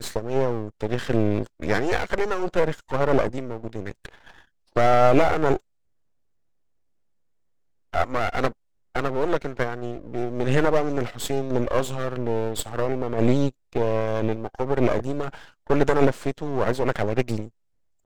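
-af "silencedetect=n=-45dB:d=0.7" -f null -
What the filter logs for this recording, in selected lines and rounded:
silence_start: 5.60
silence_end: 7.93 | silence_duration: 2.33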